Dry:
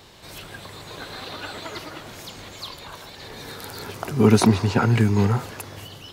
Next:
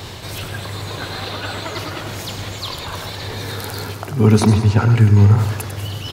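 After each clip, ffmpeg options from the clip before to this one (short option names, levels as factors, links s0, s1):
-af "equalizer=f=100:t=o:w=0.7:g=9.5,areverse,acompressor=mode=upward:threshold=0.126:ratio=2.5,areverse,aecho=1:1:98|196|294|392|490:0.355|0.156|0.0687|0.0302|0.0133"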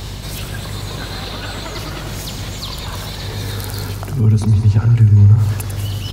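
-filter_complex "[0:a]bass=f=250:g=5,treble=f=4000:g=5,acrossover=split=140[s0][s1];[s1]acompressor=threshold=0.0794:ratio=6[s2];[s0][s2]amix=inputs=2:normalize=0,aeval=exprs='val(0)+0.0355*(sin(2*PI*50*n/s)+sin(2*PI*2*50*n/s)/2+sin(2*PI*3*50*n/s)/3+sin(2*PI*4*50*n/s)/4+sin(2*PI*5*50*n/s)/5)':c=same,volume=0.891"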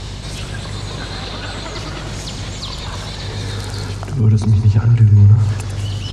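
-af "lowpass=f=8700:w=0.5412,lowpass=f=8700:w=1.3066"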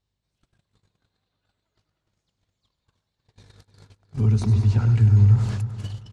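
-filter_complex "[0:a]agate=range=0.00501:threshold=0.112:ratio=16:detection=peak,asplit=2[s0][s1];[s1]adelay=309,lowpass=f=3800:p=1,volume=0.282,asplit=2[s2][s3];[s3]adelay=309,lowpass=f=3800:p=1,volume=0.33,asplit=2[s4][s5];[s5]adelay=309,lowpass=f=3800:p=1,volume=0.33,asplit=2[s6][s7];[s7]adelay=309,lowpass=f=3800:p=1,volume=0.33[s8];[s2][s4][s6][s8]amix=inputs=4:normalize=0[s9];[s0][s9]amix=inputs=2:normalize=0,volume=0.473"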